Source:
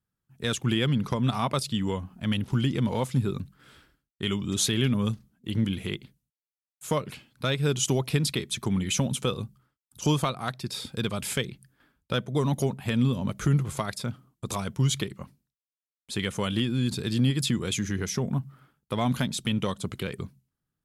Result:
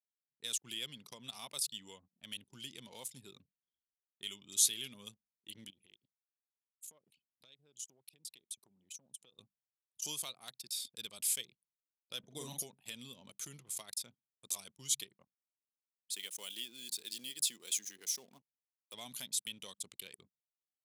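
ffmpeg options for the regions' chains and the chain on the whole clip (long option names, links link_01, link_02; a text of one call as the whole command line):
ffmpeg -i in.wav -filter_complex "[0:a]asettb=1/sr,asplit=3[link_01][link_02][link_03];[link_01]atrim=end=5.704[link_04];[link_02]atrim=start=5.7:end=9.39,asetpts=PTS-STARTPTS,afade=type=in:duration=0.004:curve=qsin,afade=type=out:start_time=3.686:duration=0.004:curve=qsin,highpass=43,acompressor=threshold=-40dB:ratio=5:attack=3.2:release=140:knee=1:detection=peak[link_05];[link_03]atrim=start=9.386[link_06];[link_04][link_05]acrossfade=duration=0.004:curve1=hsin:curve2=qsin[link_07];[link_07][link_06]acrossfade=duration=0.004:curve1=qsin:curve2=hsin,asettb=1/sr,asplit=3[link_08][link_09][link_10];[link_08]atrim=end=12.194[link_11];[link_09]atrim=start=12.19:end=12.63,asetpts=PTS-STARTPTS,afade=type=in:duration=0.004:curve=qsin,afade=type=out:start_time=0.436:duration=0.004:curve=qsin,lowshelf=frequency=420:gain=7.5,asplit=2[link_12][link_13];[link_13]adelay=44,volume=-4dB[link_14];[link_12][link_14]amix=inputs=2:normalize=0,atrim=end_sample=19404[link_15];[link_10]atrim=start=12.626[link_16];[link_11][link_15]acrossfade=duration=0.004:curve1=hsin:curve2=qsin[link_17];[link_17][link_16]acrossfade=duration=0.004:curve1=qsin:curve2=hsin,asettb=1/sr,asplit=3[link_18][link_19][link_20];[link_18]atrim=end=16.134[link_21];[link_19]atrim=start=16.13:end=18.94,asetpts=PTS-STARTPTS,afade=type=in:duration=0.004:curve=qsin,afade=type=out:start_time=2.806:duration=0.004:curve=qsin,highpass=260,acrusher=bits=9:dc=4:mix=0:aa=0.000001[link_22];[link_20]atrim=start=18.936[link_23];[link_21][link_22]acrossfade=duration=0.004:curve1=hsin:curve2=qsin[link_24];[link_24][link_23]acrossfade=duration=0.004:curve1=qsin:curve2=hsin,equalizer=frequency=1400:width_type=o:width=1.2:gain=-11,anlmdn=0.158,aderivative" out.wav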